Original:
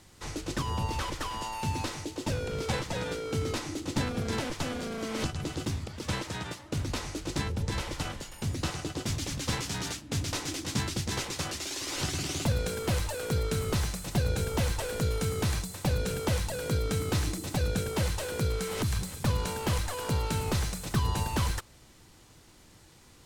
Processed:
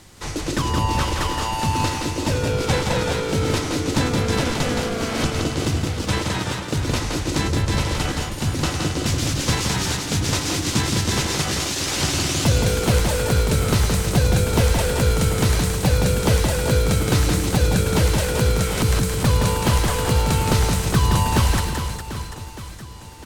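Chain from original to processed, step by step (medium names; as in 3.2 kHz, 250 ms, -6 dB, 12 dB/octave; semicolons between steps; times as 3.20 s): reverse bouncing-ball echo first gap 170 ms, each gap 1.4×, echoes 5; trim +9 dB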